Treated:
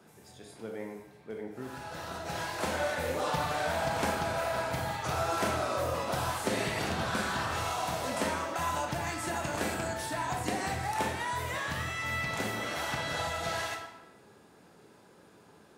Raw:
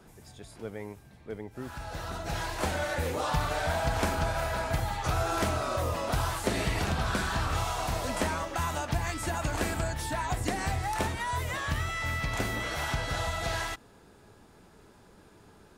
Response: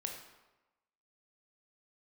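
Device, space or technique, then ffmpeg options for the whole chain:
bathroom: -filter_complex "[1:a]atrim=start_sample=2205[s0];[0:a][s0]afir=irnorm=-1:irlink=0,highpass=140"

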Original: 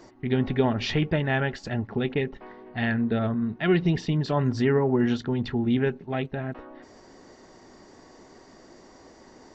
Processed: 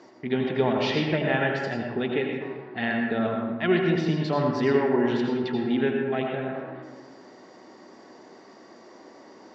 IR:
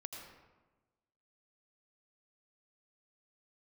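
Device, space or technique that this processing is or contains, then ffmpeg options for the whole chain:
supermarket ceiling speaker: -filter_complex "[0:a]highpass=210,lowpass=5200[s0];[1:a]atrim=start_sample=2205[s1];[s0][s1]afir=irnorm=-1:irlink=0,volume=1.88"

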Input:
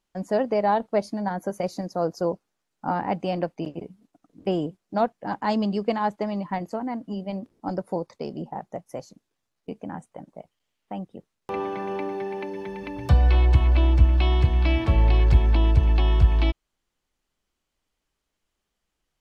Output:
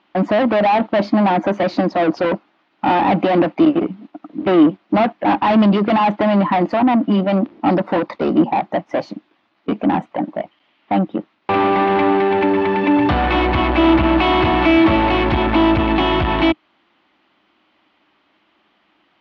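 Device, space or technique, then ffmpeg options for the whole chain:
overdrive pedal into a guitar cabinet: -filter_complex "[0:a]asettb=1/sr,asplit=3[s0][s1][s2];[s0]atrim=end=13.834[s3];[s1]atrim=start=13.83:end=14.7,asetpts=PTS-STARTPTS,afade=t=in:d=0.004:c=qsin,afade=t=out:st=0.866:d=0.004:c=qsin,equalizer=f=1000:w=0.48:g=5[s4];[s2]atrim=start=14.696[s5];[s3][s4]acrossfade=d=0.004:c1=hsin:c2=qsin[s6];[s6][s5]acrossfade=d=0.004:c1=qsin:c2=hsin,asplit=2[s7][s8];[s8]highpass=f=720:p=1,volume=50.1,asoftclip=type=tanh:threshold=0.473[s9];[s7][s9]amix=inputs=2:normalize=0,lowpass=f=2000:p=1,volume=0.501,highpass=83,equalizer=f=140:t=q:w=4:g=-4,equalizer=f=210:t=q:w=4:g=4,equalizer=f=310:t=q:w=4:g=9,equalizer=f=460:t=q:w=4:g=-9,equalizer=f=1600:t=q:w=4:g=-3,lowpass=f=3700:w=0.5412,lowpass=f=3700:w=1.3066"

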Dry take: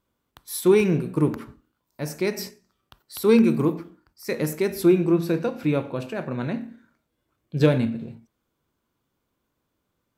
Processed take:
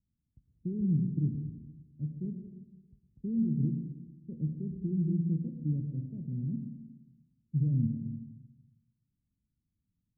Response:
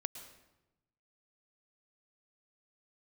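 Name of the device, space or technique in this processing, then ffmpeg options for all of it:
club heard from the street: -filter_complex "[0:a]alimiter=limit=0.2:level=0:latency=1:release=20,lowpass=f=200:w=0.5412,lowpass=f=200:w=1.3066[s0];[1:a]atrim=start_sample=2205[s1];[s0][s1]afir=irnorm=-1:irlink=0"

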